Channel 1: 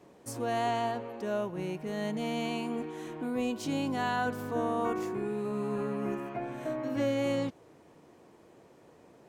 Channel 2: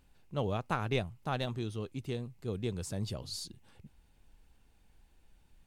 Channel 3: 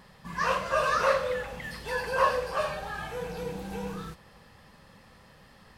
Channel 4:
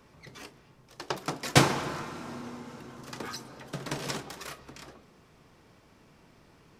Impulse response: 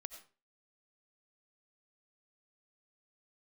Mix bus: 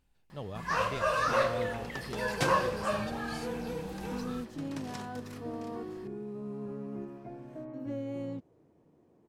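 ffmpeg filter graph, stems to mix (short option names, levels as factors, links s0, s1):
-filter_complex "[0:a]tiltshelf=f=710:g=8,adelay=900,volume=0.266[s0];[1:a]volume=0.422[s1];[2:a]adelay=300,volume=0.708[s2];[3:a]adelay=850,volume=0.266[s3];[s0][s1][s2][s3]amix=inputs=4:normalize=0"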